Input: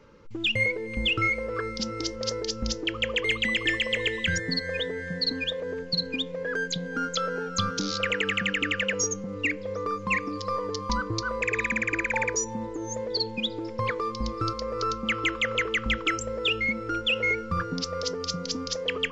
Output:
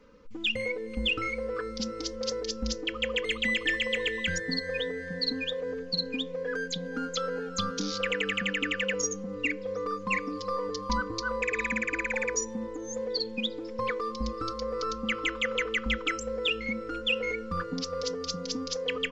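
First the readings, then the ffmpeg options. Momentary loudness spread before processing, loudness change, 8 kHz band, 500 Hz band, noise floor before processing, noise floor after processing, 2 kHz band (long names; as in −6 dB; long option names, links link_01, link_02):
6 LU, −3.0 dB, −3.0 dB, −1.0 dB, −37 dBFS, −39 dBFS, −3.5 dB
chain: -af "aecho=1:1:4:0.87,volume=-5.5dB"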